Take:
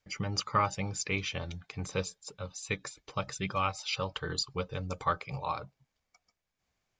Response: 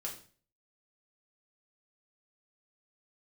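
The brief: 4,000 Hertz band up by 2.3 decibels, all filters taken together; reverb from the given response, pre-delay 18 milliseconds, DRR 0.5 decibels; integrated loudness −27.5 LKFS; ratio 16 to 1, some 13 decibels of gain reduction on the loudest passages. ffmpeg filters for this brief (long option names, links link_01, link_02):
-filter_complex "[0:a]equalizer=frequency=4000:width_type=o:gain=3,acompressor=threshold=-35dB:ratio=16,asplit=2[link_01][link_02];[1:a]atrim=start_sample=2205,adelay=18[link_03];[link_02][link_03]afir=irnorm=-1:irlink=0,volume=0dB[link_04];[link_01][link_04]amix=inputs=2:normalize=0,volume=10.5dB"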